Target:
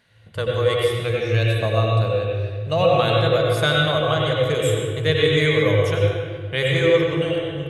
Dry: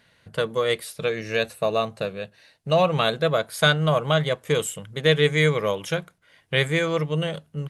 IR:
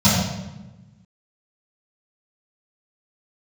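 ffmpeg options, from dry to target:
-filter_complex "[0:a]asplit=2[s0][s1];[1:a]atrim=start_sample=2205,asetrate=23814,aresample=44100,adelay=82[s2];[s1][s2]afir=irnorm=-1:irlink=0,volume=0.0668[s3];[s0][s3]amix=inputs=2:normalize=0,volume=0.75"

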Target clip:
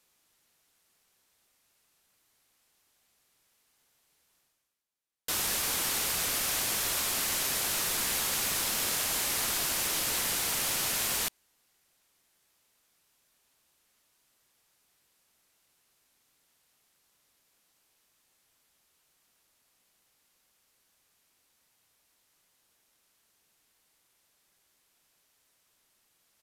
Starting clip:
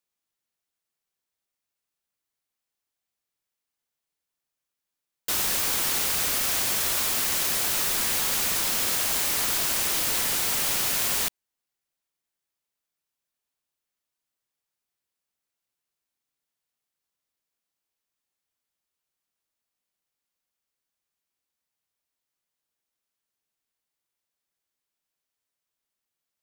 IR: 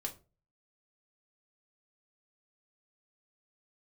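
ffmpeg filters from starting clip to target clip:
-af "areverse,acompressor=mode=upward:threshold=0.00355:ratio=2.5,areverse,aresample=32000,aresample=44100,volume=0.668"

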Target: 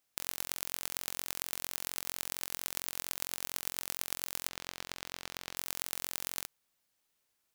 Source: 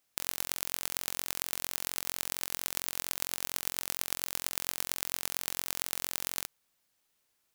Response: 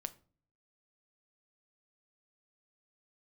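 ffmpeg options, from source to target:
-filter_complex "[0:a]asettb=1/sr,asplit=3[s0][s1][s2];[s0]atrim=end=4.484[s3];[s1]atrim=start=4.48:end=5.57,asetpts=PTS-STARTPTS,afade=t=in:d=0.004:c=qsin,afade=t=out:st=1.086:d=0.004:c=qsin,acrossover=split=6000[s4][s5];[s5]acompressor=threshold=0.0112:ratio=4:attack=1:release=60[s6];[s4][s6]amix=inputs=2:normalize=0[s7];[s2]atrim=start=5.566[s8];[s3][s7]acrossfade=d=0.004:c1=hsin:c2=qsin[s9];[s9][s8]acrossfade=d=0.004:c1=qsin:c2=hsin,volume=0.708"

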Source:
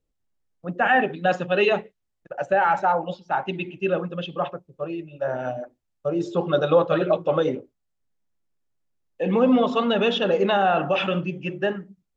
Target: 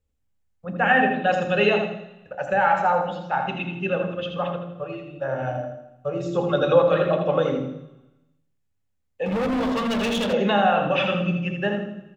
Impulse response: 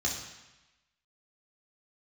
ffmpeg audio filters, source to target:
-filter_complex "[0:a]aecho=1:1:81|162|243|324:0.473|0.17|0.0613|0.0221,asplit=2[s0][s1];[1:a]atrim=start_sample=2205,lowshelf=f=300:g=12[s2];[s1][s2]afir=irnorm=-1:irlink=0,volume=0.188[s3];[s0][s3]amix=inputs=2:normalize=0,asettb=1/sr,asplit=3[s4][s5][s6];[s4]atrim=end=9.254[s7];[s5]atrim=start=9.25:end=10.33,asetpts=PTS-STARTPTS,afade=t=in:d=0.004:c=qsin,afade=t=out:st=1.076:d=0.004:c=qsin,asoftclip=type=hard:threshold=0.0841[s8];[s6]atrim=start=10.326[s9];[s7][s8]acrossfade=d=0.004:c1=hsin:c2=qsin[s10];[s10][s9]acrossfade=d=0.004:c1=qsin:c2=hsin"

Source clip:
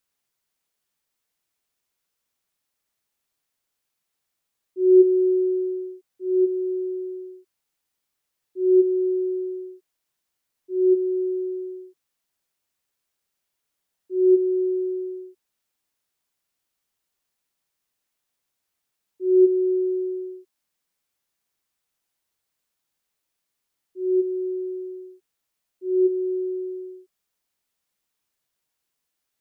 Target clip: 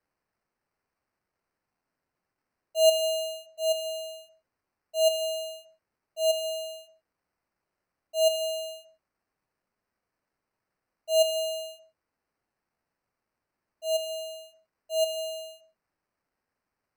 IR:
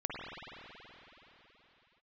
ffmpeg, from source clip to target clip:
-filter_complex "[0:a]acrusher=samples=22:mix=1:aa=0.000001,asplit=2[s0][s1];[1:a]atrim=start_sample=2205,afade=t=out:st=0.3:d=0.01,atrim=end_sample=13671[s2];[s1][s2]afir=irnorm=-1:irlink=0,volume=0.266[s3];[s0][s3]amix=inputs=2:normalize=0,asetrate=76440,aresample=44100,volume=0.447"

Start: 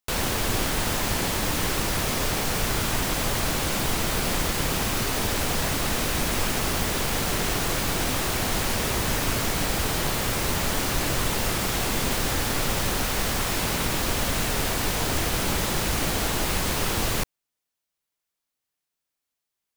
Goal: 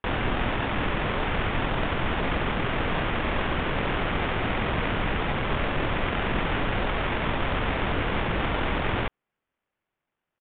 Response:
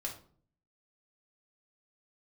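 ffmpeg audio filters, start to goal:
-af "acrusher=samples=10:mix=1:aa=0.000001,aresample=8000,aresample=44100,atempo=1.9"

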